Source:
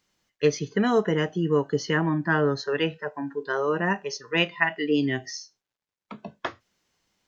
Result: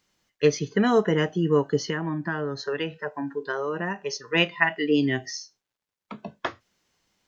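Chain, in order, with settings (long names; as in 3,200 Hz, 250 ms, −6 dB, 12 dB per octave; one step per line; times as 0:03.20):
0:01.78–0:04.05: downward compressor 10 to 1, threshold −26 dBFS, peak gain reduction 9 dB
level +1.5 dB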